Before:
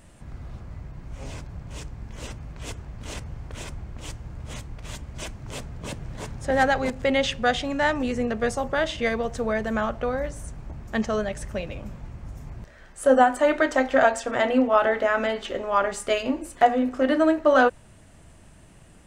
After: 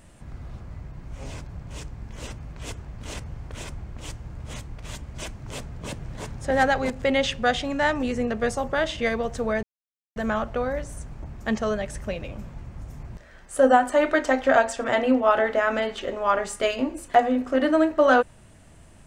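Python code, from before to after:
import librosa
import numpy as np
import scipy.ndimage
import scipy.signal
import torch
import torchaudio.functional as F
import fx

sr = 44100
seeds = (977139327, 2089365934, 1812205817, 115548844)

y = fx.edit(x, sr, fx.insert_silence(at_s=9.63, length_s=0.53), tone=tone)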